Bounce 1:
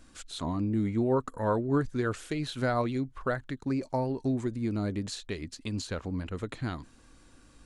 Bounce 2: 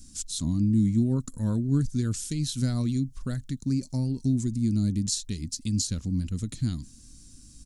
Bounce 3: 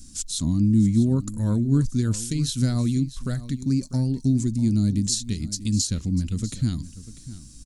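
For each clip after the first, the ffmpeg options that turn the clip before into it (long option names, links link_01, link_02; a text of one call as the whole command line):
ffmpeg -i in.wav -af "firequalizer=gain_entry='entry(220,0);entry(410,-19);entry(830,-25);entry(5400,6)':delay=0.05:min_phase=1,volume=7.5dB" out.wav
ffmpeg -i in.wav -af "aecho=1:1:646:0.168,volume=4dB" out.wav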